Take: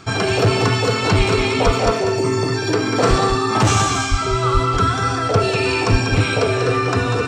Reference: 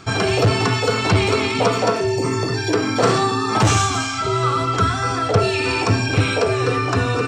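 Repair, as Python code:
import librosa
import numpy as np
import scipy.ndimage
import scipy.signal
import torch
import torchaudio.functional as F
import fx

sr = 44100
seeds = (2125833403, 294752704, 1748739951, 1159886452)

y = fx.fix_declip(x, sr, threshold_db=-4.0)
y = fx.fix_deplosive(y, sr, at_s=(1.17, 1.65, 3.09, 4.1, 4.53, 5.91))
y = fx.fix_echo_inverse(y, sr, delay_ms=193, level_db=-7.0)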